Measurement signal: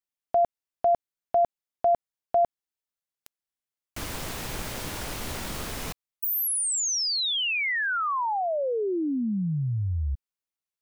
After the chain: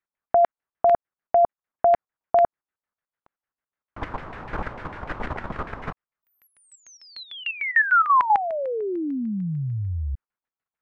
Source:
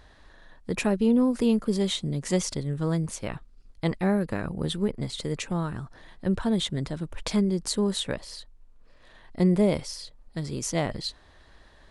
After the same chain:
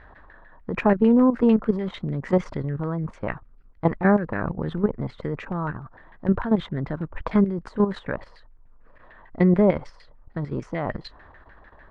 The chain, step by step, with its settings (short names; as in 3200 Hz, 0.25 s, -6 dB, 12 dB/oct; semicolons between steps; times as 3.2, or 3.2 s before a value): LFO low-pass saw down 6.7 Hz 900–2000 Hz; level quantiser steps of 11 dB; gain +6.5 dB